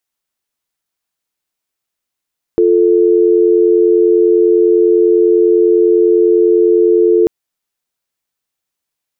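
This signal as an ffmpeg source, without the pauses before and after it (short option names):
-f lavfi -i "aevalsrc='0.335*(sin(2*PI*350*t)+sin(2*PI*440*t))':d=4.69:s=44100"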